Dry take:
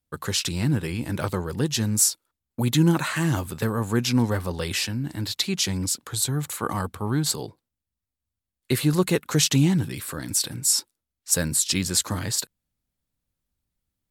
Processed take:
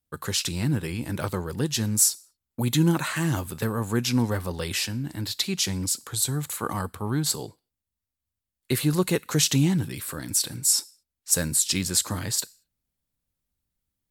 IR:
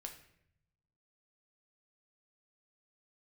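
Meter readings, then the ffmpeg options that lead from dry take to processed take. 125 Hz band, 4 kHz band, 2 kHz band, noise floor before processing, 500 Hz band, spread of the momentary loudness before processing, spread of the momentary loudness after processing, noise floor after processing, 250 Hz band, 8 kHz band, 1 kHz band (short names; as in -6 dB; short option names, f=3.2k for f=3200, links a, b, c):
-2.0 dB, -1.5 dB, -2.0 dB, under -85 dBFS, -2.0 dB, 8 LU, 10 LU, under -85 dBFS, -2.0 dB, 0.0 dB, -2.0 dB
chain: -filter_complex "[0:a]asplit=2[a][b];[b]aderivative[c];[1:a]atrim=start_sample=2205,afade=t=out:st=0.29:d=0.01,atrim=end_sample=13230[d];[c][d]afir=irnorm=-1:irlink=0,volume=-3.5dB[e];[a][e]amix=inputs=2:normalize=0,volume=-2dB"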